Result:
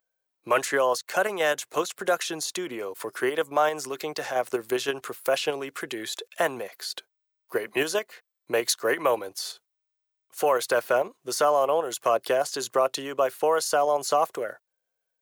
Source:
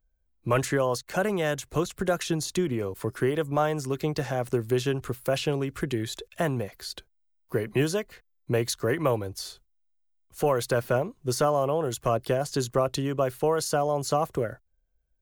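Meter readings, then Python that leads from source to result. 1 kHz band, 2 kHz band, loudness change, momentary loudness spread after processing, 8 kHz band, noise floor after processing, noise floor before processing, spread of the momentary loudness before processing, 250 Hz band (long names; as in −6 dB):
+4.0 dB, +5.0 dB, +1.0 dB, 11 LU, +3.0 dB, −82 dBFS, −70 dBFS, 7 LU, −6.0 dB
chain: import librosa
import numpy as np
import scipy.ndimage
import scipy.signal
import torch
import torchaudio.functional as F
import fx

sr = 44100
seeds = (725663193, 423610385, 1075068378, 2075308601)

p1 = scipy.signal.sosfilt(scipy.signal.butter(2, 530.0, 'highpass', fs=sr, output='sos'), x)
p2 = fx.level_steps(p1, sr, step_db=15)
y = p1 + (p2 * librosa.db_to_amplitude(2.0))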